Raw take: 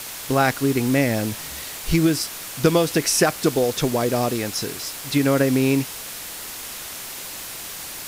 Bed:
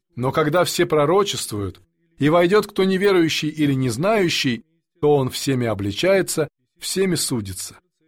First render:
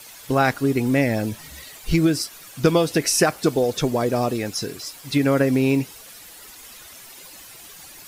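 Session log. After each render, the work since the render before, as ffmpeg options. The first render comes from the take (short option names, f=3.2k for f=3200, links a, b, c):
-af "afftdn=nr=12:nf=-34"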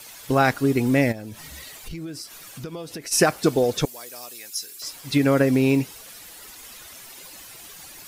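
-filter_complex "[0:a]asplit=3[a][b][c];[a]afade=t=out:st=1.11:d=0.02[d];[b]acompressor=threshold=-34dB:ratio=4:attack=3.2:release=140:knee=1:detection=peak,afade=t=in:st=1.11:d=0.02,afade=t=out:st=3.11:d=0.02[e];[c]afade=t=in:st=3.11:d=0.02[f];[d][e][f]amix=inputs=3:normalize=0,asettb=1/sr,asplit=3[g][h][i];[g]atrim=end=3.854[j];[h]atrim=start=3.85:end=4.82,asetpts=PTS-STARTPTS,afade=t=in:d=0.004:c=qsin,afade=t=out:st=0.966:d=0.004:c=qsin,aderivative[k];[i]atrim=start=4.816[l];[j][k]acrossfade=d=0.004:c1=hsin:c2=qsin[m];[m][l]acrossfade=d=0.004:c1=qsin:c2=hsin"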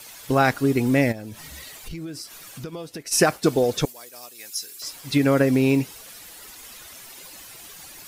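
-filter_complex "[0:a]asplit=3[a][b][c];[a]afade=t=out:st=2.68:d=0.02[d];[b]agate=range=-33dB:threshold=-36dB:ratio=3:release=100:detection=peak,afade=t=in:st=2.68:d=0.02,afade=t=out:st=4.38:d=0.02[e];[c]afade=t=in:st=4.38:d=0.02[f];[d][e][f]amix=inputs=3:normalize=0"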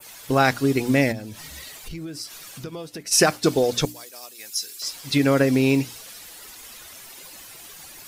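-af "bandreject=f=60:t=h:w=6,bandreject=f=120:t=h:w=6,bandreject=f=180:t=h:w=6,bandreject=f=240:t=h:w=6,bandreject=f=300:t=h:w=6,adynamicequalizer=threshold=0.01:dfrequency=4700:dqfactor=0.76:tfrequency=4700:tqfactor=0.76:attack=5:release=100:ratio=0.375:range=2.5:mode=boostabove:tftype=bell"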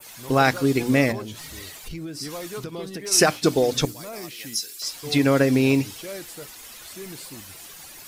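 -filter_complex "[1:a]volume=-19.5dB[a];[0:a][a]amix=inputs=2:normalize=0"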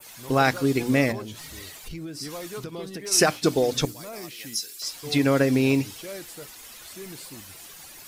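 -af "volume=-2dB"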